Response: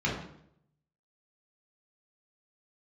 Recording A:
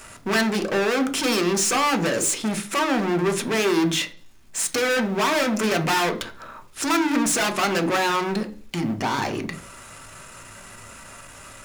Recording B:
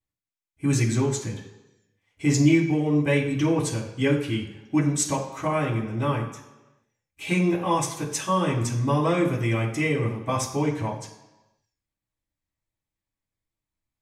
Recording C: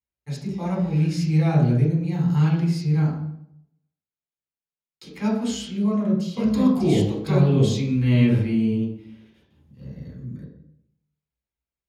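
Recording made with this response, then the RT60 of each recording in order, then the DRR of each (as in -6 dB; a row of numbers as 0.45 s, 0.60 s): C; 0.45 s, 1.1 s, 0.70 s; 6.5 dB, -6.0 dB, -5.0 dB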